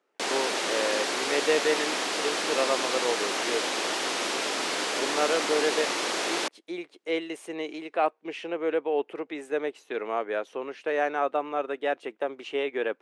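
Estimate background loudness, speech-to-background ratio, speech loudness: -27.5 LUFS, -3.0 dB, -30.5 LUFS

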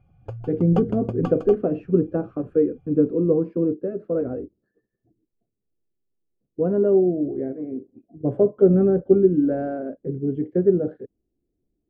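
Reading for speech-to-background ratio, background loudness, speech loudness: 12.5 dB, -34.5 LUFS, -22.0 LUFS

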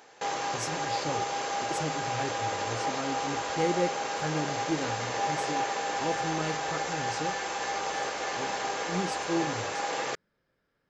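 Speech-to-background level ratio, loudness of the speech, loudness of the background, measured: -5.0 dB, -36.5 LUFS, -31.5 LUFS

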